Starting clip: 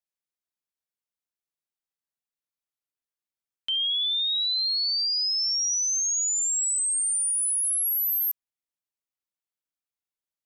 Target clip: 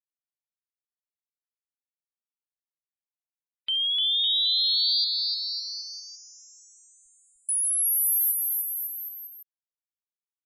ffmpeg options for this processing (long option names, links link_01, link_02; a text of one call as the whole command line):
ffmpeg -i in.wav -filter_complex "[0:a]aeval=exprs='val(0)+0.5*0.00316*sgn(val(0))':channel_layout=same,asettb=1/sr,asplit=3[link_01][link_02][link_03];[link_01]atrim=end=5.044[link_04];[link_02]atrim=start=5.04:end=7.49,asetpts=PTS-STARTPTS,afade=type=in:duration=0.004:curve=qsin,afade=type=out:start_time=2.446:duration=0.004:curve=qsin,lowpass=frequency=3200:width=0.5412,lowpass=frequency=3200:width=1.3066[link_05];[link_03]atrim=start=7.486[link_06];[link_04][link_05]acrossfade=duration=0.004:curve1=hsin:curve2=qsin[link_07];[link_07][link_06]acrossfade=duration=0.004:curve1=qsin:curve2=hsin,afftfilt=real='re*gte(hypot(re,im),0.00316)':imag='im*gte(hypot(re,im),0.00316)':win_size=1024:overlap=0.75,aecho=1:1:300|555|771.8|956|1113:0.631|0.398|0.251|0.158|0.1" out.wav